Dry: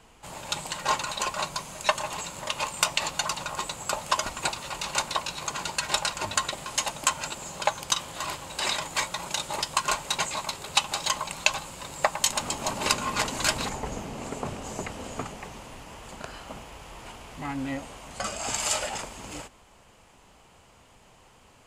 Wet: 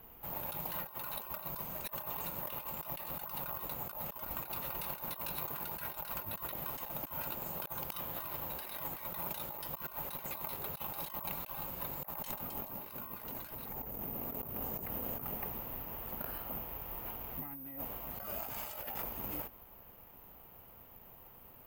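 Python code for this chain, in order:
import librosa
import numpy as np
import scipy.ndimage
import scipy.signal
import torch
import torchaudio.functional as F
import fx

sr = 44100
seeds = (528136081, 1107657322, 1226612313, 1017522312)

y = fx.lowpass(x, sr, hz=1300.0, slope=6)
y = fx.over_compress(y, sr, threshold_db=-40.0, ratio=-1.0)
y = (np.kron(scipy.signal.resample_poly(y, 1, 3), np.eye(3)[0]) * 3)[:len(y)]
y = y * librosa.db_to_amplitude(-7.0)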